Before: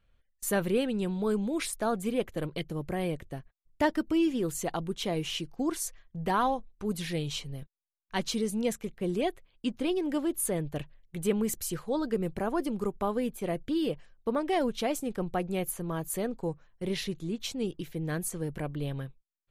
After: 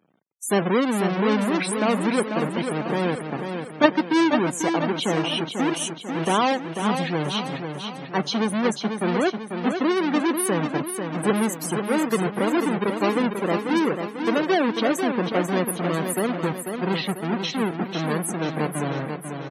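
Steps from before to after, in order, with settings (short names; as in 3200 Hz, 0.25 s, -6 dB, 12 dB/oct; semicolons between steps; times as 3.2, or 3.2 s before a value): half-waves squared off; HPF 170 Hz 24 dB/oct; notch 7200 Hz, Q 18; in parallel at +2.5 dB: level quantiser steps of 19 dB; on the sum: loudest bins only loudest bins 64; on a send: feedback echo 0.493 s, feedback 51%, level -6.5 dB; on the sum: gain +1.5 dB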